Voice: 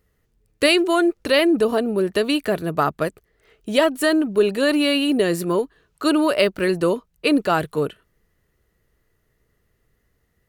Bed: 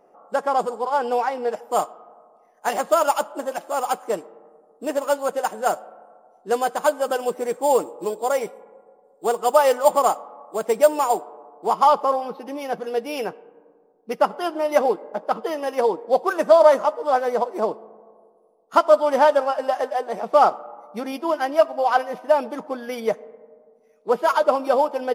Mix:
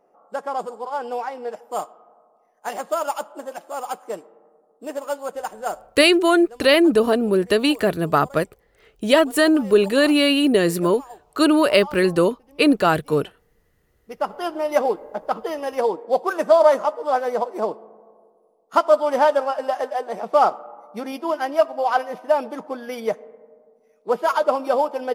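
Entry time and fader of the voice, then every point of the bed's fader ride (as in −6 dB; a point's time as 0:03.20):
5.35 s, +2.0 dB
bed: 0:05.81 −5.5 dB
0:06.09 −21 dB
0:13.66 −21 dB
0:14.41 −1 dB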